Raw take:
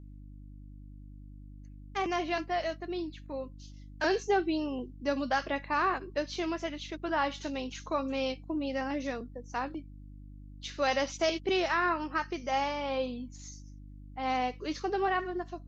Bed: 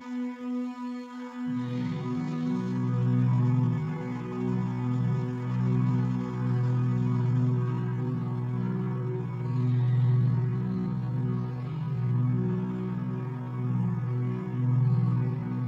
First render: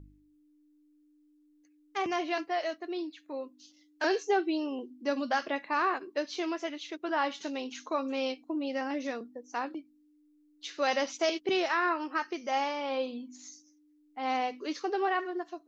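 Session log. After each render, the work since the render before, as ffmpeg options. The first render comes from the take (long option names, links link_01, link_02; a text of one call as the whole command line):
ffmpeg -i in.wav -af "bandreject=frequency=50:width_type=h:width=4,bandreject=frequency=100:width_type=h:width=4,bandreject=frequency=150:width_type=h:width=4,bandreject=frequency=200:width_type=h:width=4,bandreject=frequency=250:width_type=h:width=4" out.wav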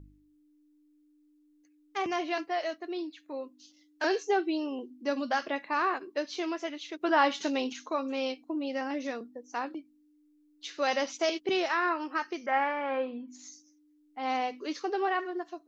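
ffmpeg -i in.wav -filter_complex "[0:a]asettb=1/sr,asplit=3[link_01][link_02][link_03];[link_01]atrim=end=7.014[link_04];[link_02]atrim=start=7.01:end=7.73,asetpts=PTS-STARTPTS,afade=type=in:duration=0.004:curve=qsin,afade=type=out:start_time=0.716:duration=0.004:curve=qsin,acontrast=46[link_05];[link_03]atrim=start=7.726[link_06];[link_04][link_05]acrossfade=duration=0.004:curve1=hsin:curve2=qsin[link_07];[link_07][link_06]acrossfade=duration=0.004:curve1=qsin:curve2=hsin,asettb=1/sr,asplit=3[link_08][link_09][link_10];[link_08]atrim=end=12.464[link_11];[link_09]atrim=start=12.46:end=13.28,asetpts=PTS-STARTPTS,afade=type=in:duration=0.004:curve=qsin,afade=type=out:start_time=0.816:duration=0.004:curve=qsin,lowpass=frequency=1700:width_type=q:width=4.2[link_12];[link_10]atrim=start=13.276[link_13];[link_11][link_12]acrossfade=duration=0.004:curve1=hsin:curve2=qsin[link_14];[link_14][link_13]acrossfade=duration=0.004:curve1=qsin:curve2=hsin" out.wav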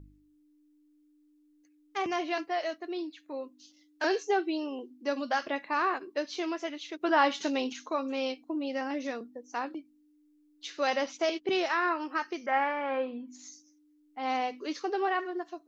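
ffmpeg -i in.wav -filter_complex "[0:a]asettb=1/sr,asplit=3[link_01][link_02][link_03];[link_01]atrim=end=4.274[link_04];[link_02]atrim=start=4.27:end=5.47,asetpts=PTS-STARTPTS,afade=type=in:duration=0.004:curve=qsin,afade=type=out:start_time=1.196:duration=0.004:curve=qsin,highpass=250[link_05];[link_03]atrim=start=5.466[link_06];[link_04][link_05]acrossfade=duration=0.004:curve1=hsin:curve2=qsin[link_07];[link_07][link_06]acrossfade=duration=0.004:curve1=qsin:curve2=hsin,asettb=1/sr,asplit=3[link_08][link_09][link_10];[link_08]atrim=end=10.904[link_11];[link_09]atrim=start=10.9:end=11.53,asetpts=PTS-STARTPTS,afade=type=in:duration=0.004:curve=qsin,afade=type=out:start_time=0.626:duration=0.004:curve=qsin,highshelf=frequency=6100:gain=-9[link_12];[link_10]atrim=start=11.526[link_13];[link_11][link_12]acrossfade=duration=0.004:curve1=hsin:curve2=qsin[link_14];[link_14][link_13]acrossfade=duration=0.004:curve1=qsin:curve2=hsin" out.wav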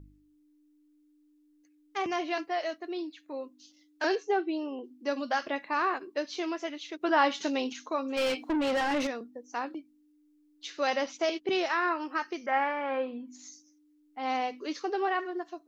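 ffmpeg -i in.wav -filter_complex "[0:a]asettb=1/sr,asplit=3[link_01][link_02][link_03];[link_01]atrim=end=4.154[link_04];[link_02]atrim=start=4.15:end=4.84,asetpts=PTS-STARTPTS,afade=type=in:duration=0.004:curve=qsin,afade=type=out:start_time=0.686:duration=0.004:curve=qsin,lowpass=frequency=2300:poles=1[link_05];[link_03]atrim=start=4.836[link_06];[link_04][link_05]acrossfade=duration=0.004:curve1=hsin:curve2=qsin[link_07];[link_07][link_06]acrossfade=duration=0.004:curve1=qsin:curve2=hsin,asplit=3[link_08][link_09][link_10];[link_08]afade=type=out:start_time=8.16:duration=0.02[link_11];[link_09]asplit=2[link_12][link_13];[link_13]highpass=frequency=720:poles=1,volume=27dB,asoftclip=type=tanh:threshold=-21dB[link_14];[link_12][link_14]amix=inputs=2:normalize=0,lowpass=frequency=2900:poles=1,volume=-6dB,afade=type=in:start_time=8.16:duration=0.02,afade=type=out:start_time=9.06:duration=0.02[link_15];[link_10]afade=type=in:start_time=9.06:duration=0.02[link_16];[link_11][link_15][link_16]amix=inputs=3:normalize=0" out.wav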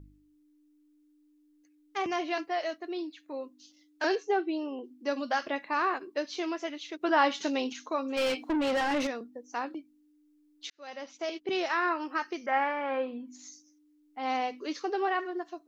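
ffmpeg -i in.wav -filter_complex "[0:a]asplit=2[link_01][link_02];[link_01]atrim=end=10.7,asetpts=PTS-STARTPTS,afade=type=out:start_time=10.696:duration=0.004:curve=hsin[link_03];[link_02]atrim=start=10.7,asetpts=PTS-STARTPTS,afade=type=in:duration=1.08[link_04];[link_03][link_04]concat=n=2:v=0:a=1" out.wav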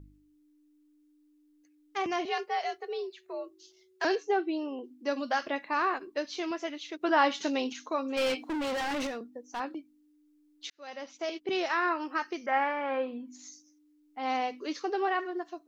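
ffmpeg -i in.wav -filter_complex "[0:a]asettb=1/sr,asplit=3[link_01][link_02][link_03];[link_01]atrim=end=2.254[link_04];[link_02]atrim=start=2.25:end=4.05,asetpts=PTS-STARTPTS,afade=type=in:duration=0.004:curve=qsin,afade=type=out:start_time=1.796:duration=0.004:curve=qsin,afreqshift=74[link_05];[link_03]atrim=start=4.046[link_06];[link_04][link_05]acrossfade=duration=0.004:curve1=hsin:curve2=qsin[link_07];[link_07][link_06]acrossfade=duration=0.004:curve1=qsin:curve2=hsin,asettb=1/sr,asplit=3[link_08][link_09][link_10];[link_08]atrim=end=5.804[link_11];[link_09]atrim=start=5.8:end=6.51,asetpts=PTS-STARTPTS,afade=type=in:duration=0.004:curve=qsin,afade=type=out:start_time=0.706:duration=0.004:curve=qsin,asubboost=boost=8:cutoff=190[link_12];[link_10]atrim=start=6.506[link_13];[link_11][link_12]acrossfade=duration=0.004:curve1=hsin:curve2=qsin[link_14];[link_14][link_13]acrossfade=duration=0.004:curve1=qsin:curve2=hsin,asettb=1/sr,asplit=3[link_15][link_16][link_17];[link_15]atrim=end=8.484[link_18];[link_16]atrim=start=8.48:end=9.6,asetpts=PTS-STARTPTS,afade=type=in:duration=0.004:curve=qsin,afade=type=out:start_time=1.116:duration=0.004:curve=qsin,asoftclip=type=hard:threshold=-30.5dB[link_19];[link_17]atrim=start=9.596[link_20];[link_18][link_19]acrossfade=duration=0.004:curve1=hsin:curve2=qsin[link_21];[link_21][link_20]acrossfade=duration=0.004:curve1=qsin:curve2=hsin" out.wav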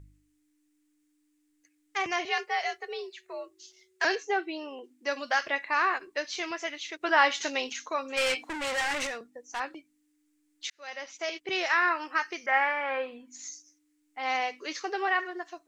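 ffmpeg -i in.wav -af "equalizer=frequency=125:width_type=o:width=1:gain=3,equalizer=frequency=250:width_type=o:width=1:gain=-10,equalizer=frequency=2000:width_type=o:width=1:gain=8,equalizer=frequency=8000:width_type=o:width=1:gain=10" out.wav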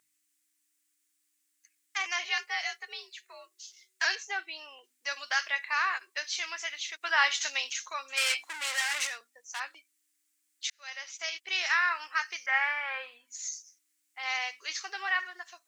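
ffmpeg -i in.wav -af "highpass=1300,highshelf=frequency=5500:gain=8" out.wav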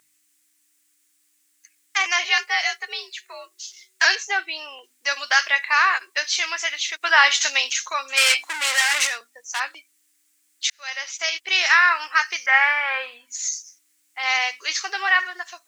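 ffmpeg -i in.wav -af "volume=11dB,alimiter=limit=-3dB:level=0:latency=1" out.wav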